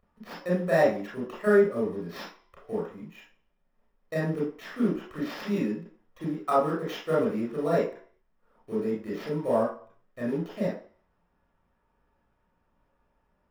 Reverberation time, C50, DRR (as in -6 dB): 0.50 s, 3.5 dB, -6.5 dB